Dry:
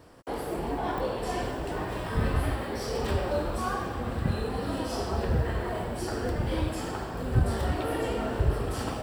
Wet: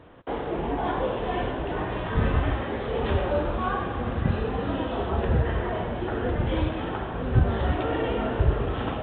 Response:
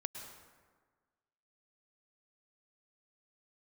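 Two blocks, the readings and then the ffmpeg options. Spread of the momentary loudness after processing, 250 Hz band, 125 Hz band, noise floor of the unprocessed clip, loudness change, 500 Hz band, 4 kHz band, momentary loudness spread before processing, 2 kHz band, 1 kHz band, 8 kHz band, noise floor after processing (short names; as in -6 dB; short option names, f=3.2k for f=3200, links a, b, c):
5 LU, +3.5 dB, +3.5 dB, -36 dBFS, +3.5 dB, +3.5 dB, +0.5 dB, 5 LU, +3.5 dB, +3.5 dB, under -35 dB, -32 dBFS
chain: -filter_complex "[0:a]asplit=2[a][b];[1:a]atrim=start_sample=2205[c];[b][c]afir=irnorm=-1:irlink=0,volume=-13dB[d];[a][d]amix=inputs=2:normalize=0,volume=2dB" -ar 8000 -c:a pcm_mulaw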